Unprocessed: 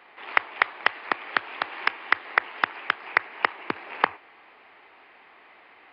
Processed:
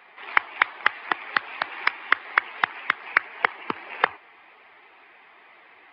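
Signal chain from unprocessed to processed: coarse spectral quantiser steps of 15 dB; peaking EQ 2.7 kHz +3 dB 1.4 oct

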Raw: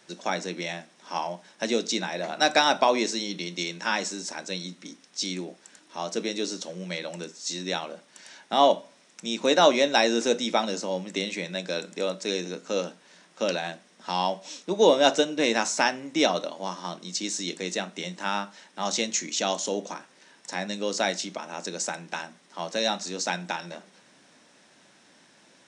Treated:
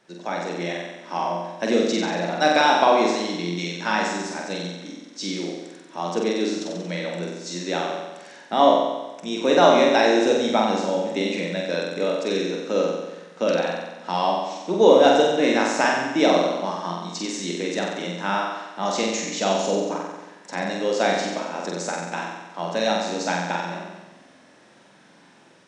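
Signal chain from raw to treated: treble shelf 2.9 kHz -11 dB; level rider gain up to 5 dB; flutter echo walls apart 7.9 m, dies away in 1.1 s; trim -1 dB

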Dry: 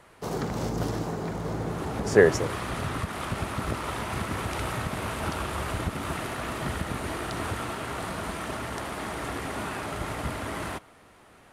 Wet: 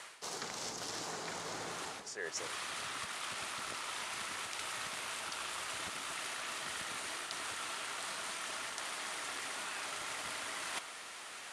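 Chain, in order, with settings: frequency weighting ITU-R 468; reverse; compression 12:1, threshold -43 dBFS, peak gain reduction 28.5 dB; reverse; trim +4.5 dB

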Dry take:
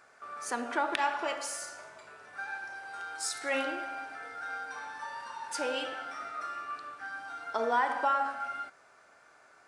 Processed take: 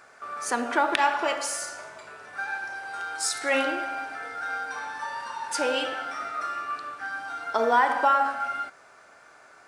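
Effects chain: short-mantissa float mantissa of 6-bit; trim +7 dB

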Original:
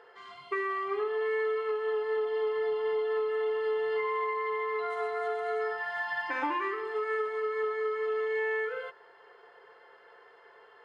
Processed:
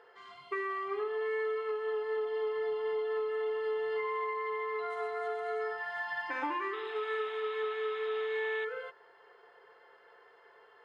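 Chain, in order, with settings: painted sound noise, 6.73–8.65 s, 740–3900 Hz -46 dBFS; trim -3.5 dB

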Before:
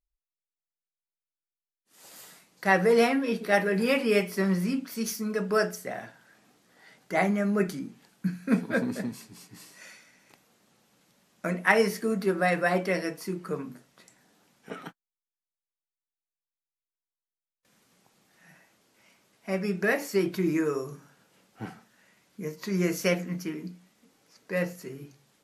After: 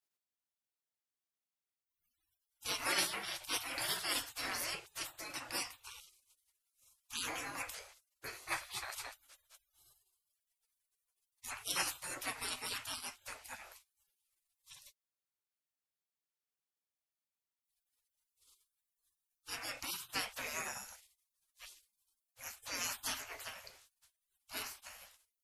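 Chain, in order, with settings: spectral gate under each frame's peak -30 dB weak; trim +6.5 dB

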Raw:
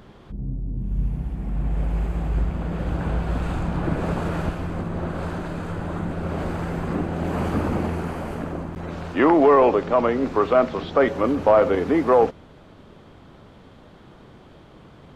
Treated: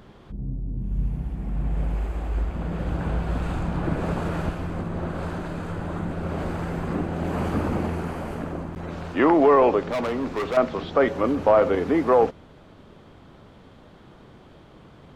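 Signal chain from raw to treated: 1.94–2.56 s: peaking EQ 140 Hz -15 dB 0.7 oct; 9.85–10.57 s: hard clipper -21.5 dBFS, distortion -15 dB; trim -1.5 dB

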